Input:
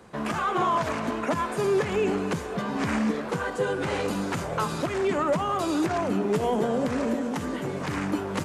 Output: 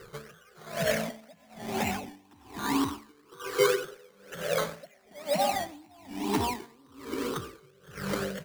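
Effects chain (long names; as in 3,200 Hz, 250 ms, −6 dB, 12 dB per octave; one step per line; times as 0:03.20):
rippled gain that drifts along the octave scale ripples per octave 0.59, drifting +0.26 Hz, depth 23 dB
0:03.30–0:05.54: high-pass filter 250 Hz 12 dB per octave
sample-and-hold swept by an LFO 13×, swing 60% 2 Hz
convolution reverb RT60 0.35 s, pre-delay 92 ms, DRR 10.5 dB
tremolo with a sine in dB 1.1 Hz, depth 32 dB
level −3.5 dB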